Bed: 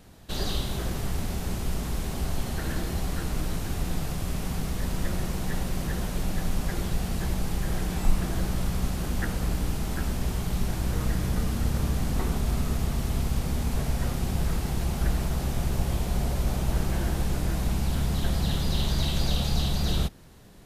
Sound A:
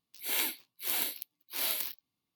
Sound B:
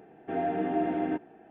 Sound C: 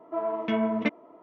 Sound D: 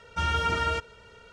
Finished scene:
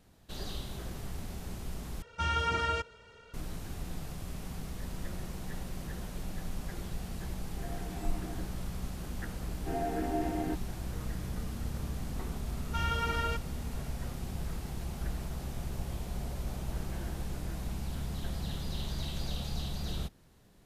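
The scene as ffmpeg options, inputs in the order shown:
-filter_complex "[4:a]asplit=2[a][b];[2:a]asplit=2[c][d];[0:a]volume=-10.5dB,asplit=2[e][f];[e]atrim=end=2.024[g];[a]atrim=end=1.32,asetpts=PTS-STARTPTS,volume=-4dB[h];[f]atrim=start=3.336[i];[c]atrim=end=1.5,asetpts=PTS-STARTPTS,volume=-17.5dB,afade=t=in:d=0.004:c=hsin,afade=t=out:st=1.496:d=0.004:c=hsin,adelay=7270[j];[d]atrim=end=1.5,asetpts=PTS-STARTPTS,volume=-5dB,afade=t=in:d=0.004:c=hsin,afade=t=out:st=1.496:d=0.004:c=hsin,adelay=413658S[k];[b]atrim=end=1.32,asetpts=PTS-STARTPTS,volume=-6.5dB,afade=t=in:d=0.004:c=hsin,afade=t=out:st=1.316:d=0.004:c=hsin,adelay=12570[l];[g][h]acrossfade=d=0.004:c1=hsin:c2=hsin[m];[m][i]acrossfade=d=0.004:c1=hsin:c2=hsin[n];[n][j][k][l]amix=inputs=4:normalize=0"

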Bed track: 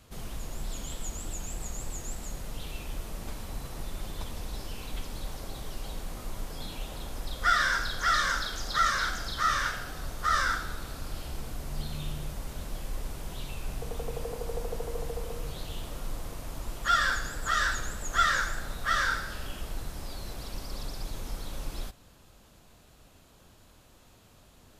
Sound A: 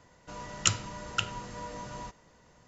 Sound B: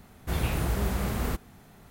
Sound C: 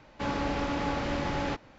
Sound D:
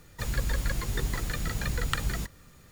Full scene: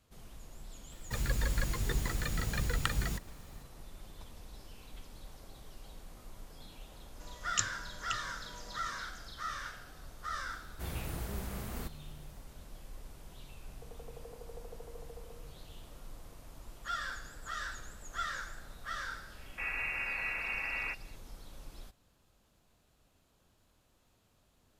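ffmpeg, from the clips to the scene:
-filter_complex "[0:a]volume=-13dB[a];[1:a]aemphasis=mode=production:type=50kf[b];[2:a]highshelf=f=4.7k:g=5.5[c];[3:a]lowpass=f=2.4k:t=q:w=0.5098,lowpass=f=2.4k:t=q:w=0.6013,lowpass=f=2.4k:t=q:w=0.9,lowpass=f=2.4k:t=q:w=2.563,afreqshift=-2800[d];[4:a]atrim=end=2.71,asetpts=PTS-STARTPTS,volume=-3dB,afade=t=in:d=0.004:c=hsin,afade=t=out:st=2.706:d=0.004:c=hsin,adelay=920[e];[b]atrim=end=2.67,asetpts=PTS-STARTPTS,volume=-12.5dB,afade=t=in:d=0.004:c=hsin,afade=t=out:st=2.666:d=0.004:c=hsin,adelay=6920[f];[c]atrim=end=1.9,asetpts=PTS-STARTPTS,volume=-12dB,afade=t=in:d=0.004:c=hsin,afade=t=out:st=1.896:d=0.004:c=hsin,adelay=10520[g];[d]atrim=end=1.78,asetpts=PTS-STARTPTS,volume=-6.5dB,afade=t=in:d=0.004:c=hsin,afade=t=out:st=1.776:d=0.004:c=hsin,adelay=19380[h];[a][e][f][g][h]amix=inputs=5:normalize=0"

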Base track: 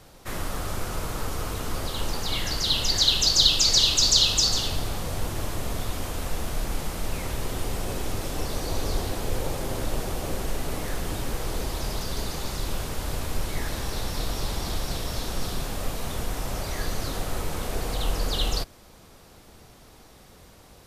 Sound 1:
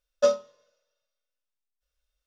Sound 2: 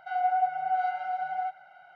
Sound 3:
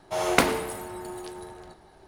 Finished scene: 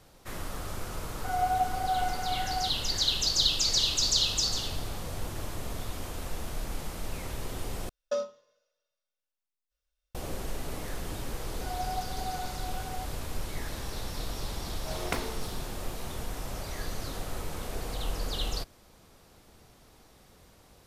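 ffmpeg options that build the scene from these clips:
-filter_complex "[2:a]asplit=2[a][b];[3:a]asplit=2[c][d];[0:a]volume=-6.5dB[e];[c]acompressor=threshold=-42dB:ratio=6:attack=3.2:release=140:knee=1:detection=peak[f];[1:a]acompressor=threshold=-21dB:ratio=6:attack=3.2:release=140:knee=1:detection=peak[g];[e]asplit=2[h][i];[h]atrim=end=7.894[j];[g]atrim=end=2.26,asetpts=PTS-STARTPTS,volume=-4dB[k];[i]atrim=start=10.146[l];[a]atrim=end=1.95,asetpts=PTS-STARTPTS,volume=-2dB,afade=t=in:d=0.004:c=hsin,afade=t=out:st=1.946:d=0.004:c=hsin,adelay=1180[m];[f]atrim=end=2.07,asetpts=PTS-STARTPTS,volume=-15dB,afade=t=in:d=0.004:c=hsin,afade=t=out:st=2.066:d=0.004:c=hsin,adelay=4980[n];[b]atrim=end=1.95,asetpts=PTS-STARTPTS,volume=-10dB,afade=t=in:d=0.004:c=hsin,afade=t=out:st=1.946:d=0.004:c=hsin,adelay=11550[o];[d]atrim=end=2.07,asetpts=PTS-STARTPTS,volume=-12.5dB,afade=t=in:d=0.004:c=hsin,afade=t=out:st=2.066:d=0.004:c=hsin,adelay=14740[p];[j][k]acrossfade=d=0.004:c1=hsin:c2=hsin[q];[q][l]acrossfade=d=0.004:c1=hsin:c2=hsin[r];[r][m][n][o][p]amix=inputs=5:normalize=0"

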